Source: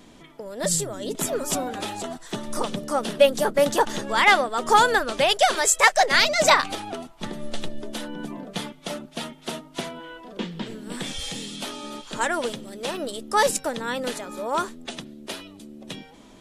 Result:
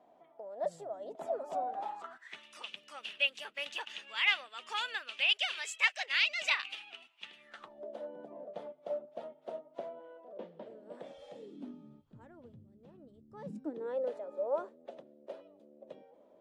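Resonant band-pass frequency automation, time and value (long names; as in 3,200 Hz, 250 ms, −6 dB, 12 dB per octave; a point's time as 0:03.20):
resonant band-pass, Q 5.9
0:01.76 700 Hz
0:02.44 2,700 Hz
0:07.37 2,700 Hz
0:07.84 590 Hz
0:11.35 590 Hz
0:12.03 100 Hz
0:13.28 100 Hz
0:13.92 560 Hz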